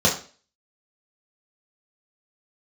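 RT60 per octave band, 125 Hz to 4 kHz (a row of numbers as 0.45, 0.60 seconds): 0.35, 0.40, 0.40, 0.35, 0.40, 0.40 seconds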